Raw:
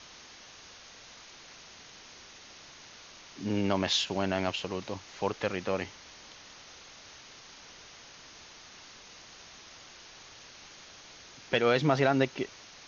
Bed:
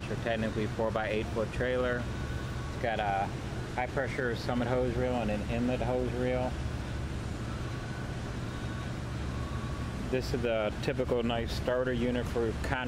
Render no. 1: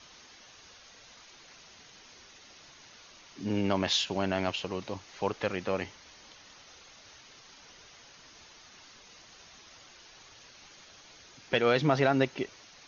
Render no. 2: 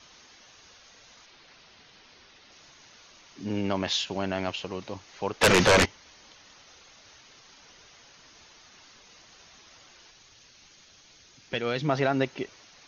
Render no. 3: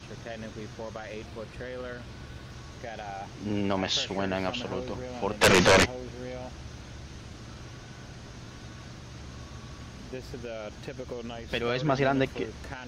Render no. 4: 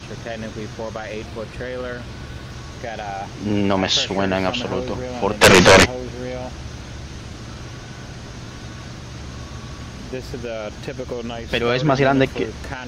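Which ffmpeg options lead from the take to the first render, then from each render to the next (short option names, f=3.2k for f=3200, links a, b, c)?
-af "afftdn=nr=6:nf=-52"
-filter_complex "[0:a]asettb=1/sr,asplit=3[a][b][c];[a]atrim=end=1.264[d];[b]atrim=start=1.26:end=2.52,asetpts=PTS-STARTPTS,afade=t=in:d=0.004:c=qsin,afade=t=out:st=1.256:d=0.004:c=qsin,lowpass=f=5.3k:w=0.5412,lowpass=f=5.3k:w=1.3066[e];[c]atrim=start=2.516[f];[d][e]acrossfade=d=0.004:c1=hsin:c2=qsin[g];[g][f]acrossfade=d=0.004:c1=qsin:c2=hsin,asplit=3[h][i][j];[h]afade=t=out:st=5.41:d=0.02[k];[i]aeval=exprs='0.2*sin(PI/2*7.94*val(0)/0.2)':c=same,afade=t=in:st=5.41:d=0.02,afade=t=out:st=5.84:d=0.02[l];[j]afade=t=in:st=5.84:d=0.02[m];[k][l][m]amix=inputs=3:normalize=0,asettb=1/sr,asplit=3[n][o][p];[n]atrim=end=10.114[q];[o]atrim=start=10.11:end=11.89,asetpts=PTS-STARTPTS,afade=t=in:d=0.004:c=qsin,afade=t=out:st=1.776:d=0.004:c=qsin,equalizer=f=830:t=o:w=2.9:g=-6[r];[p]atrim=start=11.886[s];[q][r]acrossfade=d=0.004:c1=hsin:c2=qsin[t];[t][s]acrossfade=d=0.004:c1=qsin:c2=hsin"
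-filter_complex "[1:a]volume=-8dB[a];[0:a][a]amix=inputs=2:normalize=0"
-af "volume=9.5dB,alimiter=limit=-3dB:level=0:latency=1"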